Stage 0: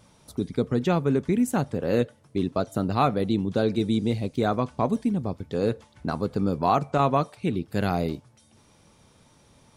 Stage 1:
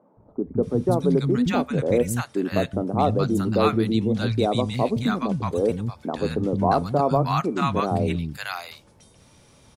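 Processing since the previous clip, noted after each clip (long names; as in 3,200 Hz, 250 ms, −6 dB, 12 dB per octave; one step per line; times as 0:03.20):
three-band delay without the direct sound mids, lows, highs 170/630 ms, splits 220/980 Hz
level +4.5 dB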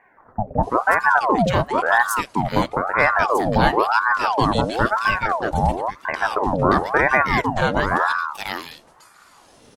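ring modulator whose carrier an LFO sweeps 830 Hz, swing 60%, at 0.98 Hz
level +6 dB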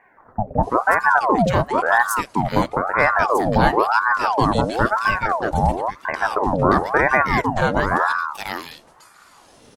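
dynamic equaliser 3,200 Hz, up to −5 dB, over −36 dBFS, Q 1.4
level +1 dB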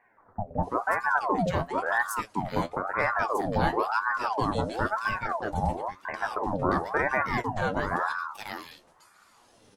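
flanger 0.95 Hz, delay 8.1 ms, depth 4 ms, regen +48%
level −5.5 dB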